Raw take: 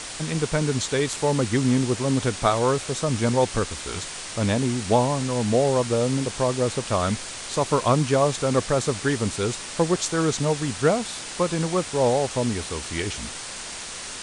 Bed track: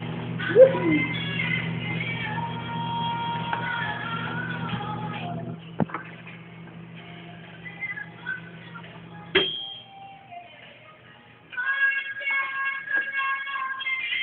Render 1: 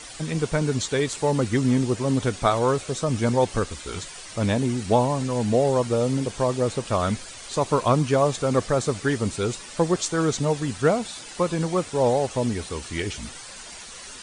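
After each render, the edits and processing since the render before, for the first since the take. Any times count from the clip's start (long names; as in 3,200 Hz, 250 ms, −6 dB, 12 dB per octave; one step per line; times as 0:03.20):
broadband denoise 10 dB, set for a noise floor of −36 dBFS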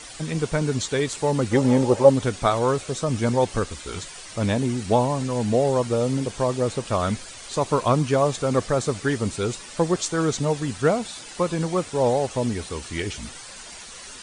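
0:01.51–0:02.10: hollow resonant body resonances 560/810 Hz, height 18 dB, ringing for 35 ms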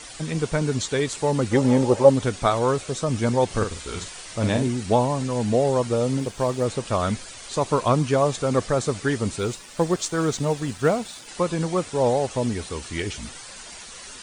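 0:03.46–0:04.68: double-tracking delay 47 ms −6 dB
0:06.19–0:06.65: mu-law and A-law mismatch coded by A
0:09.39–0:11.28: mu-law and A-law mismatch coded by A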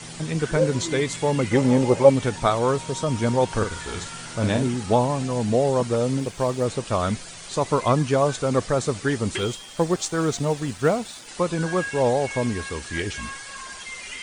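mix in bed track −10 dB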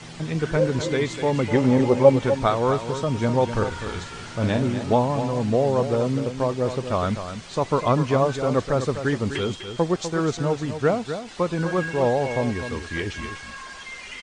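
high-frequency loss of the air 94 metres
single-tap delay 250 ms −9.5 dB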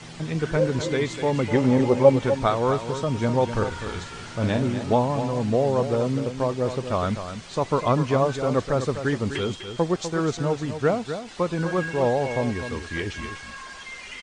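level −1 dB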